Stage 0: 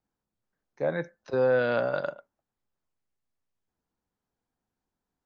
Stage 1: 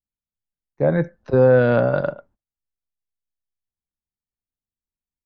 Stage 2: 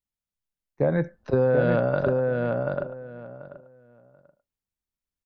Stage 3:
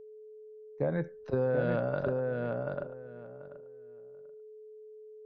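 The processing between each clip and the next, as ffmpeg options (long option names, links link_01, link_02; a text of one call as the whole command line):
ffmpeg -i in.wav -af "aemphasis=mode=reproduction:type=riaa,agate=range=-29dB:threshold=-58dB:ratio=16:detection=peak,volume=6.5dB" out.wav
ffmpeg -i in.wav -filter_complex "[0:a]acompressor=threshold=-19dB:ratio=4,asplit=2[link_01][link_02];[link_02]adelay=736,lowpass=frequency=2800:poles=1,volume=-3dB,asplit=2[link_03][link_04];[link_04]adelay=736,lowpass=frequency=2800:poles=1,volume=0.19,asplit=2[link_05][link_06];[link_06]adelay=736,lowpass=frequency=2800:poles=1,volume=0.19[link_07];[link_01][link_03][link_05][link_07]amix=inputs=4:normalize=0" out.wav
ffmpeg -i in.wav -af "aeval=exprs='val(0)+0.0112*sin(2*PI*430*n/s)':channel_layout=same,volume=-8dB" out.wav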